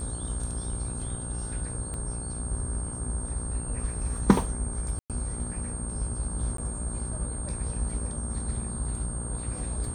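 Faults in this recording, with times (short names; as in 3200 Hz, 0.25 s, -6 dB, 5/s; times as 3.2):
buzz 60 Hz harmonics 28 -35 dBFS
tone 8600 Hz -37 dBFS
1.94 pop -25 dBFS
4.99–5.1 gap 0.107 s
6.57–6.58 gap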